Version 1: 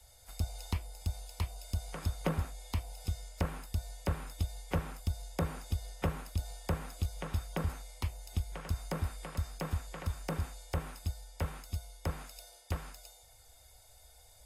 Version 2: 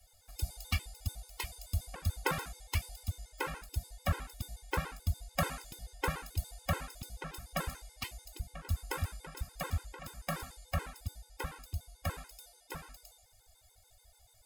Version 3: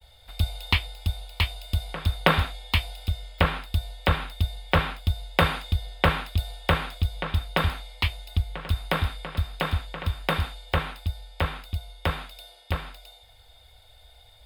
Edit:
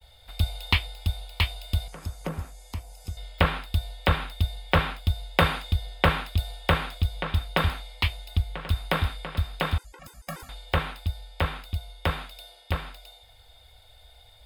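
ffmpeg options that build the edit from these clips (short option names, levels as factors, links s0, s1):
-filter_complex "[2:a]asplit=3[s0][s1][s2];[s0]atrim=end=1.882[s3];[0:a]atrim=start=1.878:end=3.172[s4];[s1]atrim=start=3.168:end=9.782[s5];[1:a]atrim=start=9.778:end=10.492[s6];[s2]atrim=start=10.488[s7];[s3][s4]acrossfade=d=0.004:c1=hsin:c2=hsin[s8];[s8][s5]acrossfade=d=0.004:c1=hsin:c2=hsin[s9];[s9][s6]acrossfade=d=0.004:c1=hsin:c2=hsin[s10];[s10][s7]acrossfade=d=0.004:c1=hsin:c2=hsin"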